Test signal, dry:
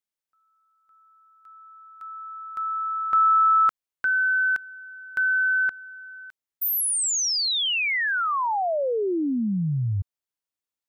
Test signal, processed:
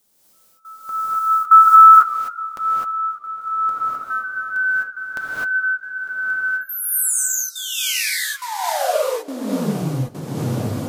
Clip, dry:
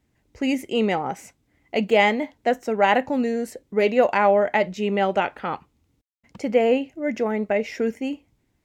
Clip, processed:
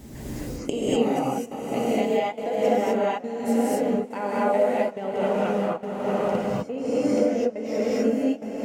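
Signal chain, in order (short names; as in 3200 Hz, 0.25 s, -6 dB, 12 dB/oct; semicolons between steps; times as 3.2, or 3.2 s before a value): recorder AGC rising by 13 dB/s; bell 2100 Hz -11 dB 2.1 oct; diffused feedback echo 0.52 s, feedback 65%, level -8 dB; compressor 6:1, threshold -28 dBFS; flipped gate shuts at -30 dBFS, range -27 dB; step gate "xxx...xx" 139 bpm -24 dB; flange 0.34 Hz, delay 4.9 ms, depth 3.8 ms, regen -61%; low shelf 100 Hz -6 dB; non-linear reverb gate 0.28 s rising, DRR -7.5 dB; maximiser +33 dB; warbling echo 0.154 s, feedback 64%, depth 160 cents, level -24 dB; gain -1 dB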